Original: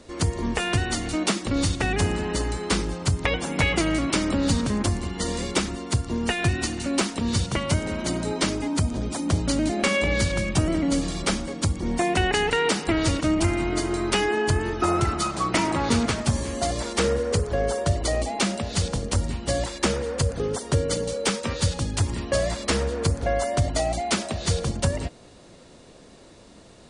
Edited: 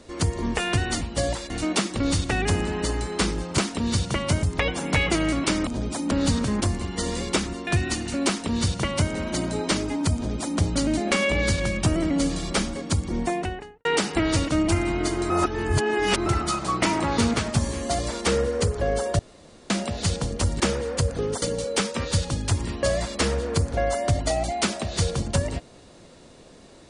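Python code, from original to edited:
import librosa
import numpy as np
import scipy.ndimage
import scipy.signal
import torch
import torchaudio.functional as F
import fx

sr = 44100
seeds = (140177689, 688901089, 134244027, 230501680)

y = fx.studio_fade_out(x, sr, start_s=11.79, length_s=0.78)
y = fx.edit(y, sr, fx.cut(start_s=5.89, length_s=0.5),
    fx.duplicate(start_s=6.99, length_s=0.85, to_s=3.09),
    fx.duplicate(start_s=8.87, length_s=0.44, to_s=4.33),
    fx.reverse_span(start_s=14.02, length_s=0.96),
    fx.room_tone_fill(start_s=17.91, length_s=0.51),
    fx.move(start_s=19.32, length_s=0.49, to_s=1.01),
    fx.cut(start_s=20.63, length_s=0.28), tone=tone)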